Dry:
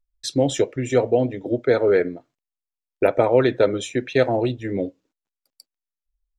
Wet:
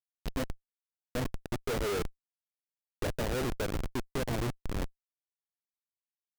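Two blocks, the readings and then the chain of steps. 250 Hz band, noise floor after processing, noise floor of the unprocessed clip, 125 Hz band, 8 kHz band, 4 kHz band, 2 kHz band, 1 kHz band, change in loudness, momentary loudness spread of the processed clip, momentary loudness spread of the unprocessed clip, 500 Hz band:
−14.0 dB, below −85 dBFS, below −85 dBFS, −9.0 dB, can't be measured, −9.5 dB, −11.0 dB, −12.5 dB, −14.5 dB, 7 LU, 10 LU, −18.0 dB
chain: feedback delay with all-pass diffusion 494 ms, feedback 51%, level −14 dB
gain on a spectral selection 0:00.43–0:01.15, 230–2,200 Hz −27 dB
comparator with hysteresis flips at −19 dBFS
level −8 dB

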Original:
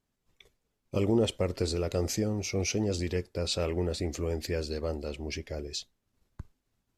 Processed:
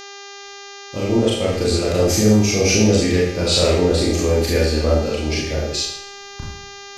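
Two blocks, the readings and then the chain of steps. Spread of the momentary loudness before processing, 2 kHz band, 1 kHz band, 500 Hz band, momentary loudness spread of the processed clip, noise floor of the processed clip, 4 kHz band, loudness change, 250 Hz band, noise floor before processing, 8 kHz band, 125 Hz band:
10 LU, +15.5 dB, +14.5 dB, +13.5 dB, 20 LU, −37 dBFS, +15.0 dB, +14.0 dB, +14.0 dB, −81 dBFS, +15.0 dB, +13.0 dB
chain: fade in at the beginning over 2.28 s
four-comb reverb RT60 0.66 s, combs from 26 ms, DRR −5 dB
hum with harmonics 400 Hz, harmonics 17, −46 dBFS −2 dB per octave
level +9 dB

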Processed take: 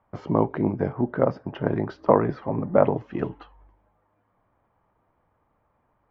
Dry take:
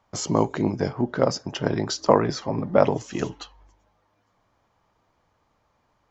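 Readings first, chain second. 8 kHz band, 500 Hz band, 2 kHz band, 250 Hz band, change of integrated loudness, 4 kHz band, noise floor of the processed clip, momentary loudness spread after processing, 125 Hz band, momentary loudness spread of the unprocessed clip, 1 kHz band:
can't be measured, −0.5 dB, −3.5 dB, 0.0 dB, −0.5 dB, below −15 dB, −70 dBFS, 9 LU, 0.0 dB, 11 LU, −1.0 dB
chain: Bessel low-pass filter 1,600 Hz, order 4

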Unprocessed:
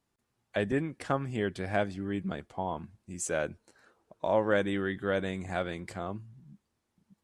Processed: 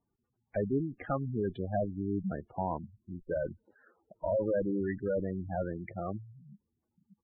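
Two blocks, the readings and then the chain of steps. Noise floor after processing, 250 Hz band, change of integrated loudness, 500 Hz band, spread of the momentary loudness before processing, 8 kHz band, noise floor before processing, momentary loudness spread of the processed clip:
−83 dBFS, −0.5 dB, −2.0 dB, −1.5 dB, 10 LU, below −35 dB, −81 dBFS, 9 LU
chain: tube saturation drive 27 dB, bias 0.7
gate on every frequency bin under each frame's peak −10 dB strong
downsampling to 8,000 Hz
level +4 dB

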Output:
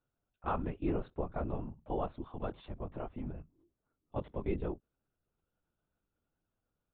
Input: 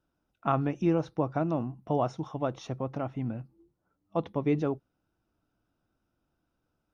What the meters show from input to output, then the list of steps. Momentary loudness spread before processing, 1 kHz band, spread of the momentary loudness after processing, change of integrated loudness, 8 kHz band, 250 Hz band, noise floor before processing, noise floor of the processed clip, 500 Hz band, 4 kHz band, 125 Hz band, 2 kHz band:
8 LU, −8.0 dB, 9 LU, −8.5 dB, can't be measured, −9.5 dB, −80 dBFS, below −85 dBFS, −8.0 dB, −10.0 dB, −9.0 dB, −7.5 dB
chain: linear-prediction vocoder at 8 kHz whisper
level −7.5 dB

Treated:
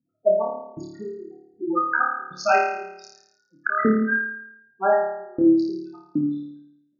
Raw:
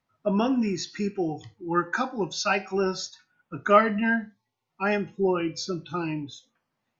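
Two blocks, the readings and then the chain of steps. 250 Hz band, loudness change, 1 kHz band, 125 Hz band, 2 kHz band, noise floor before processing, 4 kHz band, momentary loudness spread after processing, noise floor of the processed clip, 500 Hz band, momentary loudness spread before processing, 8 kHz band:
+3.5 dB, +3.5 dB, +3.0 dB, −4.5 dB, +4.5 dB, −81 dBFS, −9.0 dB, 16 LU, −71 dBFS, +3.0 dB, 14 LU, can't be measured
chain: adaptive Wiener filter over 41 samples
parametric band 6,000 Hz +5 dB 1.4 octaves
gate on every frequency bin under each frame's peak −10 dB strong
auto-filter high-pass saw up 1.3 Hz 260–3,300 Hz
bass and treble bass +9 dB, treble −8 dB
flutter between parallel walls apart 4.7 metres, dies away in 0.83 s
level +2.5 dB

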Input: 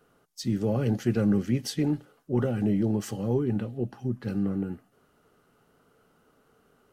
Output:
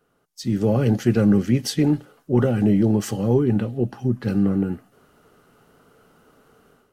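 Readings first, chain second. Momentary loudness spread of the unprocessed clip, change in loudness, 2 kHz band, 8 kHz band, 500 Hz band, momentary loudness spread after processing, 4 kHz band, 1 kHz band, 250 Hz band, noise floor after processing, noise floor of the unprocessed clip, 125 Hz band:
9 LU, +7.5 dB, +7.0 dB, +6.5 dB, +7.5 dB, 8 LU, +6.5 dB, +7.5 dB, +7.5 dB, −66 dBFS, −66 dBFS, +7.5 dB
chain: automatic gain control gain up to 12 dB
level −3.5 dB

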